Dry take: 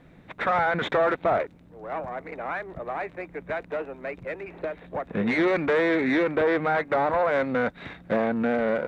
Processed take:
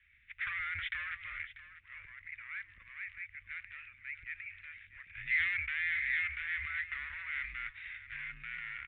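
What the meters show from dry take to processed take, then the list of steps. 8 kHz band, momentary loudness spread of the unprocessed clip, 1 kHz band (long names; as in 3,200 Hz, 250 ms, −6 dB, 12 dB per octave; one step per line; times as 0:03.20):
can't be measured, 13 LU, −25.0 dB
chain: elliptic band-stop filter 110–2,200 Hz, stop band 50 dB
parametric band 2,100 Hz +5 dB 1.1 octaves
transient designer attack −2 dB, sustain +7 dB
on a send: single-tap delay 641 ms −15 dB
on the sum: single-sideband voice off tune −82 Hz 150–3,100 Hz
level −3.5 dB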